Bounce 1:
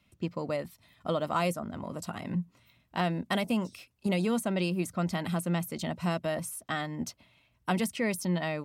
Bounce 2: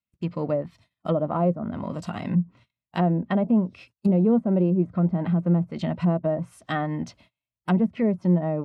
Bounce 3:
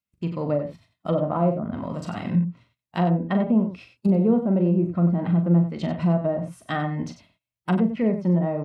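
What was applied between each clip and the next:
gate -56 dBFS, range -34 dB; harmonic-percussive split harmonic +8 dB; low-pass that closes with the level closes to 690 Hz, closed at -20.5 dBFS; trim +1.5 dB
loudspeakers at several distances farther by 14 m -8 dB, 32 m -10 dB

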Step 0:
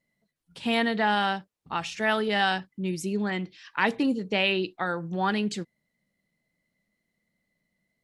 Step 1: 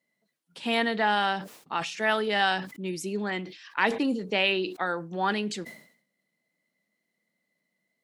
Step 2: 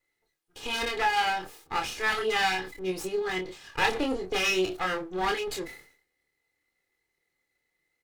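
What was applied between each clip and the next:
high-pass 240 Hz 12 dB/octave; decay stretcher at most 100 dB/s
comb filter that takes the minimum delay 2.4 ms; doubling 27 ms -4 dB

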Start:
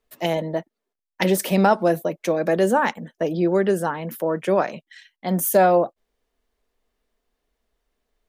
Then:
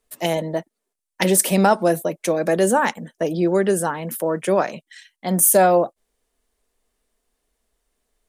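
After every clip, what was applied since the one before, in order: peaking EQ 9.2 kHz +12 dB 1 oct; trim +1 dB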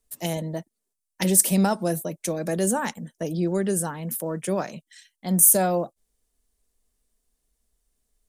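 tone controls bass +11 dB, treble +10 dB; trim -9.5 dB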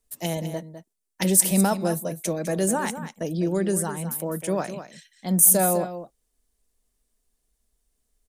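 delay 204 ms -11 dB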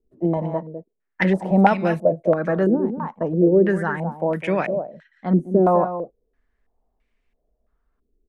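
step-sequenced low-pass 3 Hz 360–2300 Hz; trim +3.5 dB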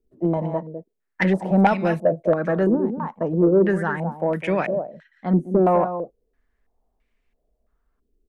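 saturation -7 dBFS, distortion -22 dB

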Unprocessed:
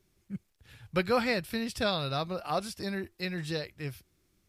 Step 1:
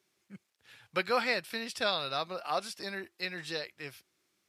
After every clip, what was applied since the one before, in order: frequency weighting A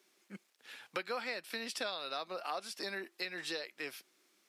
high-pass 220 Hz 24 dB/octave; compression 5:1, threshold -42 dBFS, peak gain reduction 16 dB; trim +5 dB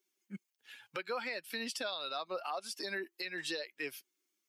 expander on every frequency bin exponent 1.5; peak limiter -34 dBFS, peak gain reduction 8.5 dB; trim +6 dB

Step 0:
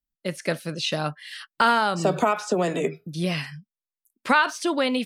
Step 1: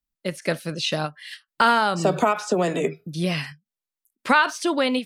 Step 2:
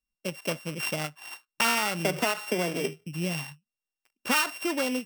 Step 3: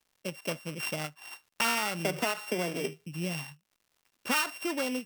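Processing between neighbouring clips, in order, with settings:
endings held to a fixed fall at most 340 dB/s; trim +1.5 dB
sorted samples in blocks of 16 samples; in parallel at -1.5 dB: compression, threshold -29 dBFS, peak gain reduction 15.5 dB; on the sum: trim -8.5 dB
crackle 180 per s -52 dBFS; trim -3.5 dB

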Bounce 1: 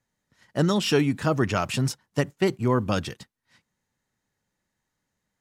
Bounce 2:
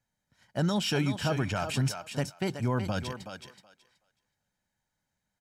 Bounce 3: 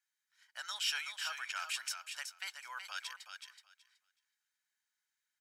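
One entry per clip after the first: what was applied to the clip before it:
comb 1.3 ms, depth 42%; peak limiter -14.5 dBFS, peak gain reduction 5.5 dB; thinning echo 374 ms, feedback 16%, high-pass 370 Hz, level -7 dB; trim -4.5 dB
high-pass 1.3 kHz 24 dB/octave; trim -2 dB

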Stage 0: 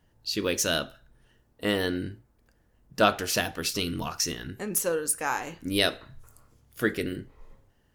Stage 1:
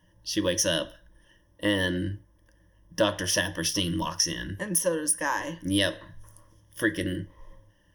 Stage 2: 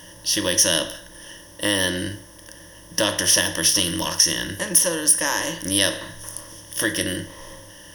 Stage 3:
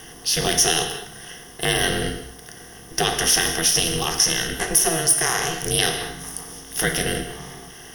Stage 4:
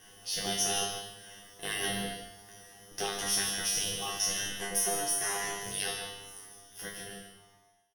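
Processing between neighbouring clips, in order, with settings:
rippled EQ curve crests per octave 1.2, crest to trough 16 dB; compression 2:1, threshold -23 dBFS, peak gain reduction 6 dB
spectral levelling over time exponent 0.6; treble shelf 2.5 kHz +10 dB; trim -2 dB
in parallel at -1 dB: peak limiter -13 dBFS, peak gain reduction 11.5 dB; on the sum: ring modulator 160 Hz; gated-style reverb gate 240 ms flat, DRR 8 dB; trim -1 dB
fade out at the end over 2.35 s; feedback comb 100 Hz, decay 0.53 s, harmonics all, mix 100%; delay 147 ms -9.5 dB

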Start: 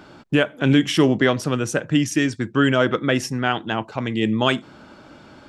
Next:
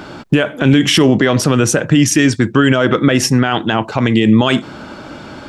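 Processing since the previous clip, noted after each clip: loudness maximiser +14.5 dB; trim -1 dB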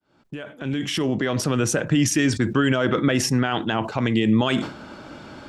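fade-in on the opening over 1.73 s; decay stretcher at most 110 dB/s; trim -8.5 dB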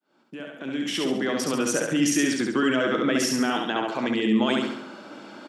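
high-pass 200 Hz 24 dB/octave; on a send: feedback delay 69 ms, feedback 47%, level -3 dB; on the sum: trim -3.5 dB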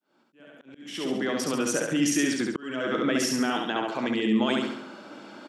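slow attack 409 ms; trim -2 dB

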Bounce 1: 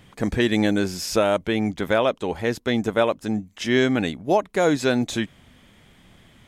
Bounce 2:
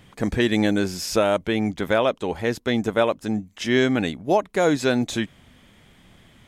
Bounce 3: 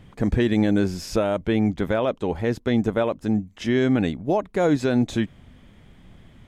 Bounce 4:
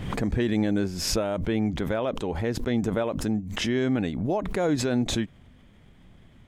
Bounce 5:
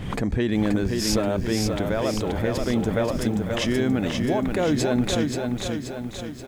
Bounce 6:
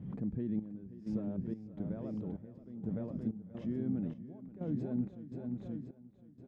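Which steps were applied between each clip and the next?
no audible change
peak limiter -12 dBFS, peak gain reduction 4 dB; tilt EQ -2 dB/octave; trim -1.5 dB
swell ahead of each attack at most 45 dB/s; trim -5 dB
delay 495 ms -15 dB; bit-crushed delay 529 ms, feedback 55%, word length 9-bit, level -4.5 dB; trim +1.5 dB
band-pass filter 180 Hz, Q 1.9; trance gate "xxxxx....xxxx.." 127 bpm -12 dB; trim -7.5 dB

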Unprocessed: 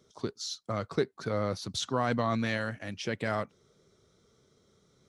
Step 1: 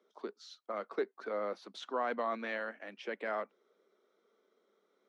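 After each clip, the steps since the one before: elliptic high-pass 200 Hz; three-band isolator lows -19 dB, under 310 Hz, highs -19 dB, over 3 kHz; trim -3 dB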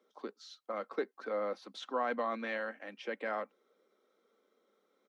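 comb 3.8 ms, depth 35%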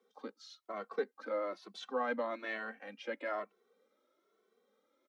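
endless flanger 2.2 ms +1.1 Hz; trim +1.5 dB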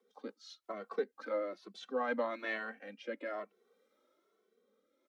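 rotary cabinet horn 5.5 Hz, later 0.65 Hz, at 0.57 s; trim +2.5 dB

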